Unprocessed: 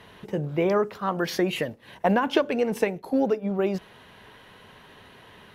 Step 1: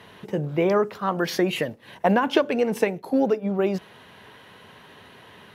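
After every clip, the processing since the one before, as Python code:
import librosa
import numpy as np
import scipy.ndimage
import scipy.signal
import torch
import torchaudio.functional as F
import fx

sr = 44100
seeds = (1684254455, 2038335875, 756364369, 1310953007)

y = scipy.signal.sosfilt(scipy.signal.butter(2, 83.0, 'highpass', fs=sr, output='sos'), x)
y = F.gain(torch.from_numpy(y), 2.0).numpy()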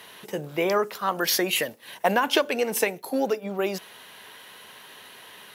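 y = fx.riaa(x, sr, side='recording')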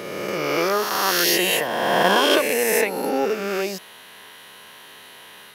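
y = fx.spec_swells(x, sr, rise_s=2.2)
y = F.gain(torch.from_numpy(y), -1.0).numpy()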